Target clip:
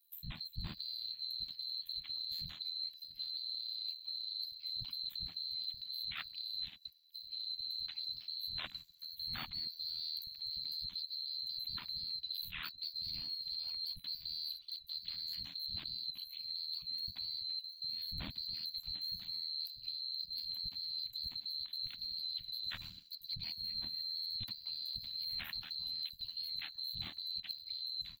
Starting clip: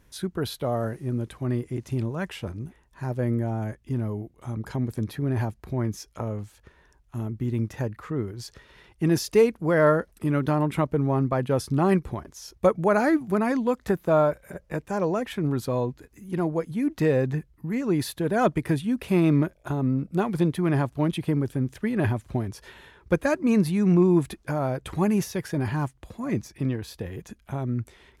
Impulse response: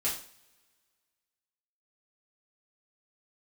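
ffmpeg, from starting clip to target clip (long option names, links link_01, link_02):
-filter_complex "[0:a]afftfilt=real='real(if(lt(b,736),b+184*(1-2*mod(floor(b/184),2)),b),0)':imag='imag(if(lt(b,736),b+184*(1-2*mod(floor(b/184),2)),b),0)':win_size=2048:overlap=0.75,bass=frequency=250:gain=7,treble=frequency=4000:gain=-3,deesser=0.95,acrossover=split=180|5900[link_01][link_02][link_03];[link_01]adelay=100[link_04];[link_02]adelay=180[link_05];[link_04][link_05][link_03]amix=inputs=3:normalize=0,acrossover=split=5700[link_06][link_07];[link_06]agate=range=-44dB:threshold=-55dB:ratio=16:detection=peak[link_08];[link_07]acrusher=bits=4:mode=log:mix=0:aa=0.000001[link_09];[link_08][link_09]amix=inputs=2:normalize=0,firequalizer=gain_entry='entry(130,0);entry(260,-10);entry(430,-30);entry(700,-15);entry(3700,6);entry(5500,-30);entry(12000,-2)':delay=0.05:min_phase=1,areverse,acompressor=threshold=-49dB:ratio=8,areverse,aeval=exprs='val(0)*sin(2*PI*40*n/s)':channel_layout=same,volume=12.5dB"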